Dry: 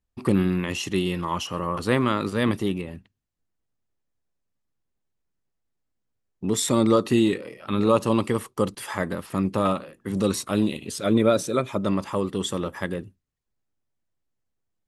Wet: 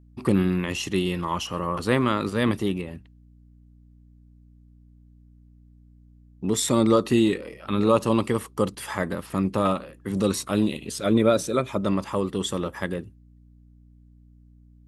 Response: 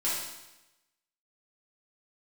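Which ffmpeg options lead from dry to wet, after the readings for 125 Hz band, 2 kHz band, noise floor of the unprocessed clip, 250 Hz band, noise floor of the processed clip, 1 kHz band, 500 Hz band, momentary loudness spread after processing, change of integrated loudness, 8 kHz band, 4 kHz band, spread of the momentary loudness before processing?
0.0 dB, 0.0 dB, -79 dBFS, 0.0 dB, -53 dBFS, 0.0 dB, 0.0 dB, 10 LU, 0.0 dB, 0.0 dB, 0.0 dB, 10 LU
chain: -af "aeval=exprs='val(0)+0.00282*(sin(2*PI*60*n/s)+sin(2*PI*2*60*n/s)/2+sin(2*PI*3*60*n/s)/3+sin(2*PI*4*60*n/s)/4+sin(2*PI*5*60*n/s)/5)':c=same"

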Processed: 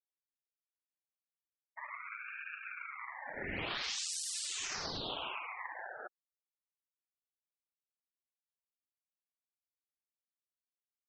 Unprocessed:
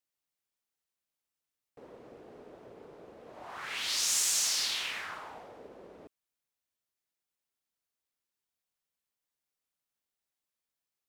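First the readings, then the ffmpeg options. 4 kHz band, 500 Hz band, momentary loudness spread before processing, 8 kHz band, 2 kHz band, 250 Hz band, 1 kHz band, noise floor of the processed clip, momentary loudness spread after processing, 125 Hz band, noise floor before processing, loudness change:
-7.0 dB, 0.0 dB, 22 LU, -10.0 dB, -0.5 dB, +3.0 dB, +1.5 dB, under -85 dBFS, 11 LU, n/a, under -85 dBFS, -10.5 dB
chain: -af "acompressor=threshold=-41dB:ratio=16,afftfilt=real='re*gte(hypot(re,im),0.00631)':imag='im*gte(hypot(re,im),0.00631)':win_size=1024:overlap=0.75,aeval=exprs='val(0)*sin(2*PI*1500*n/s+1500*0.35/0.4*sin(2*PI*0.4*n/s))':c=same,volume=9.5dB"

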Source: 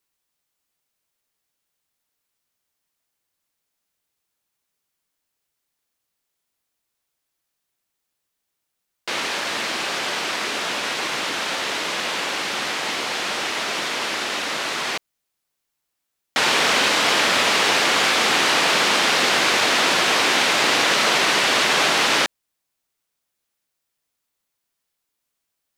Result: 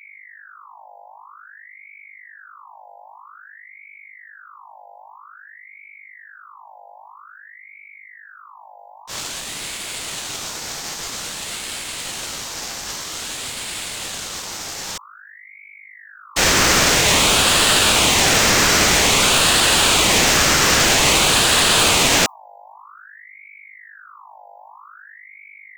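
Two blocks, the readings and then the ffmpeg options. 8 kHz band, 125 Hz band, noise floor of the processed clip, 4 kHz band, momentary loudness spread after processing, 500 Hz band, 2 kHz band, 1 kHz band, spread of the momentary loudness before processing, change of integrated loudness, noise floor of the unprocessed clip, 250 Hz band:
+9.0 dB, +13.0 dB, -43 dBFS, +3.0 dB, 15 LU, +2.0 dB, +0.5 dB, +0.5 dB, 7 LU, +3.0 dB, -79 dBFS, +4.5 dB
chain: -filter_complex "[0:a]agate=range=-33dB:threshold=-12dB:ratio=3:detection=peak,acrossover=split=3900[a][b];[a]acontrast=78[c];[c][b]amix=inputs=2:normalize=0,bandreject=f=60:t=h:w=6,bandreject=f=120:t=h:w=6,bandreject=f=180:t=h:w=6,bandreject=f=240:t=h:w=6,apsyclip=15dB,acrossover=split=2600[d][e];[e]acompressor=threshold=-17dB:ratio=4:attack=1:release=60[f];[d][f]amix=inputs=2:normalize=0,aeval=exprs='val(0)+0.0251*(sin(2*PI*50*n/s)+sin(2*PI*2*50*n/s)/2+sin(2*PI*3*50*n/s)/3+sin(2*PI*4*50*n/s)/4+sin(2*PI*5*50*n/s)/5)':c=same,aexciter=amount=14.1:drive=6:freq=5.1k,equalizer=f=10k:t=o:w=0.55:g=-13,aeval=exprs='val(0)*sin(2*PI*1500*n/s+1500*0.5/0.51*sin(2*PI*0.51*n/s))':c=same,volume=-7dB"

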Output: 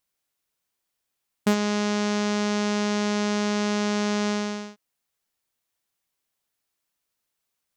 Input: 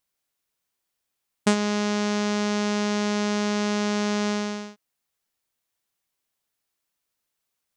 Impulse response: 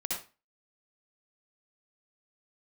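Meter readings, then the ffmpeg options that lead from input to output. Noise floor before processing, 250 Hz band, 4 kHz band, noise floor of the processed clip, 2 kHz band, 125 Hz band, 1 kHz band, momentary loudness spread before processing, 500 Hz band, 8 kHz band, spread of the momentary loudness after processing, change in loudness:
-81 dBFS, 0.0 dB, 0.0 dB, -81 dBFS, 0.0 dB, n/a, 0.0 dB, 4 LU, 0.0 dB, -0.5 dB, 5 LU, 0.0 dB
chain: -af "asoftclip=type=hard:threshold=-15dB"

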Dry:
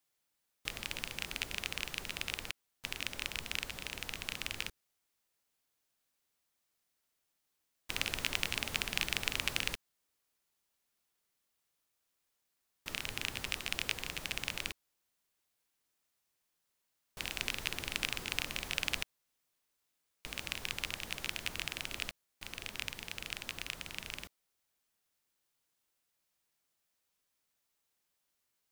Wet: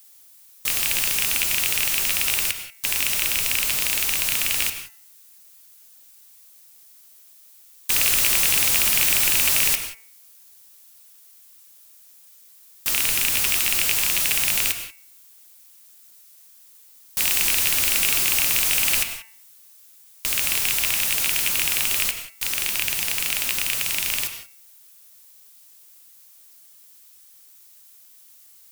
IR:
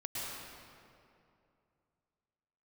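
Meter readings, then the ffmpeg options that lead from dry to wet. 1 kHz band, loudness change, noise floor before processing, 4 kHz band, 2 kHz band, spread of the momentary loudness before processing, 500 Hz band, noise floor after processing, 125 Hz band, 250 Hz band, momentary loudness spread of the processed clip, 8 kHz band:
+12.0 dB, +19.0 dB, -82 dBFS, +13.5 dB, +13.0 dB, 9 LU, +10.5 dB, -51 dBFS, +8.5 dB, +9.0 dB, 9 LU, +23.5 dB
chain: -filter_complex "[0:a]crystalizer=i=9.5:c=0,acontrast=41,bandreject=f=224:t=h:w=4,bandreject=f=448:t=h:w=4,bandreject=f=672:t=h:w=4,bandreject=f=896:t=h:w=4,bandreject=f=1.12k:t=h:w=4,bandreject=f=1.344k:t=h:w=4,bandreject=f=1.568k:t=h:w=4,bandreject=f=1.792k:t=h:w=4,bandreject=f=2.016k:t=h:w=4,bandreject=f=2.24k:t=h:w=4,bandreject=f=2.464k:t=h:w=4,bandreject=f=2.688k:t=h:w=4,bandreject=f=2.912k:t=h:w=4,asoftclip=type=tanh:threshold=-13dB,acrusher=bits=3:mode=log:mix=0:aa=0.000001,asplit=2[a][b];[1:a]atrim=start_sample=2205,afade=t=out:st=0.28:d=0.01,atrim=end_sample=12789,asetrate=52920,aresample=44100[c];[b][c]afir=irnorm=-1:irlink=0,volume=-4dB[d];[a][d]amix=inputs=2:normalize=0"

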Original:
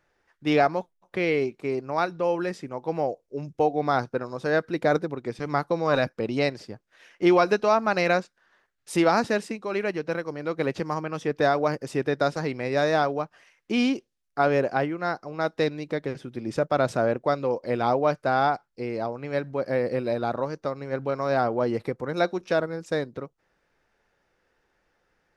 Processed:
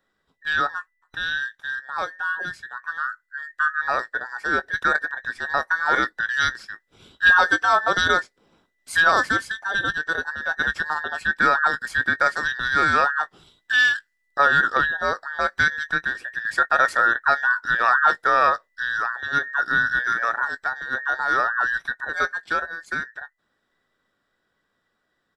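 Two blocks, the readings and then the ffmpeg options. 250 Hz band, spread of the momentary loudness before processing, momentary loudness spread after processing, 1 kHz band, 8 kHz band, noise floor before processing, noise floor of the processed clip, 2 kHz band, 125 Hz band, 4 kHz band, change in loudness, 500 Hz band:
-10.5 dB, 10 LU, 12 LU, +5.0 dB, +5.5 dB, -74 dBFS, -74 dBFS, +14.0 dB, -9.5 dB, +7.0 dB, +4.5 dB, -8.0 dB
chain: -filter_complex "[0:a]afftfilt=real='real(if(between(b,1,1012),(2*floor((b-1)/92)+1)*92-b,b),0)':imag='imag(if(between(b,1,1012),(2*floor((b-1)/92)+1)*92-b,b),0)*if(between(b,1,1012),-1,1)':win_size=2048:overlap=0.75,asplit=2[a][b];[b]adelay=19,volume=-14dB[c];[a][c]amix=inputs=2:normalize=0,dynaudnorm=f=510:g=17:m=11.5dB,volume=-3dB"

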